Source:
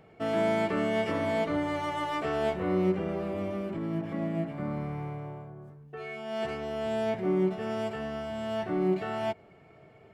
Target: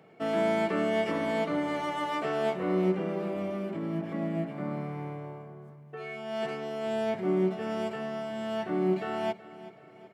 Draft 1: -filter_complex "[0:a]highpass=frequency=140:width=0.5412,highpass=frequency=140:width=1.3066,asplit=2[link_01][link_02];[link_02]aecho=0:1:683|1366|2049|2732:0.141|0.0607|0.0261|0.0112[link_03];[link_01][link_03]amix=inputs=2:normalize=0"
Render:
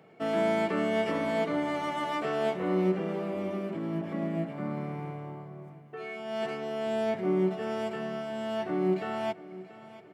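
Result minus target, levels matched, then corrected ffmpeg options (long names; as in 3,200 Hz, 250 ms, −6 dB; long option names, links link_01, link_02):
echo 306 ms late
-filter_complex "[0:a]highpass=frequency=140:width=0.5412,highpass=frequency=140:width=1.3066,asplit=2[link_01][link_02];[link_02]aecho=0:1:377|754|1131|1508:0.141|0.0607|0.0261|0.0112[link_03];[link_01][link_03]amix=inputs=2:normalize=0"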